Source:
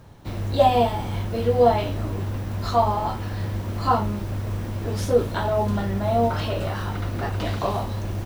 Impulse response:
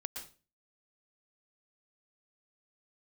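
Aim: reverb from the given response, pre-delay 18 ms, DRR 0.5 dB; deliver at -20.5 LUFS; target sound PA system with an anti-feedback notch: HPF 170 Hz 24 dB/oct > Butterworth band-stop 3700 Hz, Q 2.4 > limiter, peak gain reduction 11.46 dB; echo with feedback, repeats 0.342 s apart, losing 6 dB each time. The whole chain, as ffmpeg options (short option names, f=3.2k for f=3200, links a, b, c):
-filter_complex "[0:a]aecho=1:1:342|684|1026|1368|1710|2052:0.501|0.251|0.125|0.0626|0.0313|0.0157,asplit=2[a][b];[1:a]atrim=start_sample=2205,adelay=18[c];[b][c]afir=irnorm=-1:irlink=0,volume=0.5dB[d];[a][d]amix=inputs=2:normalize=0,highpass=f=170:w=0.5412,highpass=f=170:w=1.3066,asuperstop=centerf=3700:order=8:qfactor=2.4,volume=4dB,alimiter=limit=-10dB:level=0:latency=1"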